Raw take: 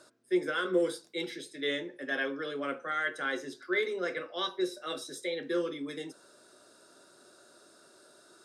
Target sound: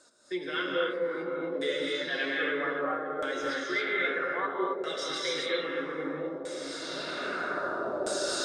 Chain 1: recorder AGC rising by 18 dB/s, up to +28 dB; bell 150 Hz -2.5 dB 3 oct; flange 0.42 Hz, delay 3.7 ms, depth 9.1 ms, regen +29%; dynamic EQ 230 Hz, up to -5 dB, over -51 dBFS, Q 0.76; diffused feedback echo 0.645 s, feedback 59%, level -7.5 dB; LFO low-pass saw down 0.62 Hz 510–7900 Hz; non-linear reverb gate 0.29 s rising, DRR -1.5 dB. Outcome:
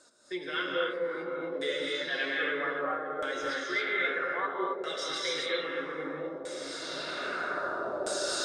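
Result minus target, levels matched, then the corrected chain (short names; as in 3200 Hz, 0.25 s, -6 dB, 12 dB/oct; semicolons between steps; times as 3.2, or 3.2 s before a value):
250 Hz band -3.0 dB
recorder AGC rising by 18 dB/s, up to +28 dB; bell 150 Hz -2.5 dB 3 oct; flange 0.42 Hz, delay 3.7 ms, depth 9.1 ms, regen +29%; dynamic EQ 58 Hz, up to -5 dB, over -51 dBFS, Q 0.76; diffused feedback echo 0.645 s, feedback 59%, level -7.5 dB; LFO low-pass saw down 0.62 Hz 510–7900 Hz; non-linear reverb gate 0.29 s rising, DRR -1.5 dB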